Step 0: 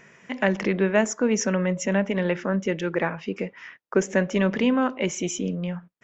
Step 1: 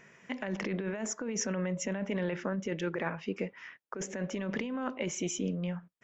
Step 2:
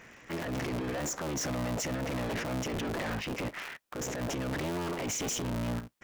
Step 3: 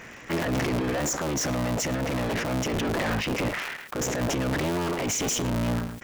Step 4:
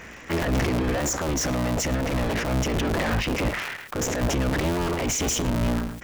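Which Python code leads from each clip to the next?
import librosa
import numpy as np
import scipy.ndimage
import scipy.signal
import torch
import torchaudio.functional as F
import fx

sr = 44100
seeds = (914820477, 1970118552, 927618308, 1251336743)

y1 = fx.over_compress(x, sr, threshold_db=-25.0, ratio=-1.0)
y1 = y1 * 10.0 ** (-8.0 / 20.0)
y2 = fx.cycle_switch(y1, sr, every=3, mode='inverted')
y2 = fx.transient(y2, sr, attack_db=-7, sustain_db=7)
y2 = np.clip(10.0 ** (35.5 / 20.0) * y2, -1.0, 1.0) / 10.0 ** (35.5 / 20.0)
y2 = y2 * 10.0 ** (4.5 / 20.0)
y3 = fx.rider(y2, sr, range_db=4, speed_s=2.0)
y3 = y3 + 10.0 ** (-23.5 / 20.0) * np.pad(y3, (int(108 * sr / 1000.0), 0))[:len(y3)]
y3 = fx.sustainer(y3, sr, db_per_s=67.0)
y3 = y3 * 10.0 ** (6.5 / 20.0)
y4 = fx.octave_divider(y3, sr, octaves=2, level_db=-2.0)
y4 = y4 * 10.0 ** (1.5 / 20.0)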